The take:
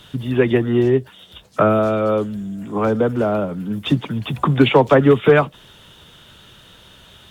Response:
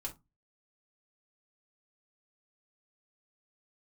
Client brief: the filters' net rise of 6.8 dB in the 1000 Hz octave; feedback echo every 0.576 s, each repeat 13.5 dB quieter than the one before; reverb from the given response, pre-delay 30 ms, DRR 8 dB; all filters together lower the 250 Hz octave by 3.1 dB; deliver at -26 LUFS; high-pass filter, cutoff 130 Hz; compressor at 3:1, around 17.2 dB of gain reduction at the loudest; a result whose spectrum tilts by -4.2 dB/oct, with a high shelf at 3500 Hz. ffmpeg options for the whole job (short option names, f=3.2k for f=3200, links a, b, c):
-filter_complex "[0:a]highpass=130,equalizer=f=250:t=o:g=-4,equalizer=f=1k:t=o:g=8.5,highshelf=f=3.5k:g=4,acompressor=threshold=-30dB:ratio=3,aecho=1:1:576|1152:0.211|0.0444,asplit=2[a][b];[1:a]atrim=start_sample=2205,adelay=30[c];[b][c]afir=irnorm=-1:irlink=0,volume=-6.5dB[d];[a][d]amix=inputs=2:normalize=0,volume=3.5dB"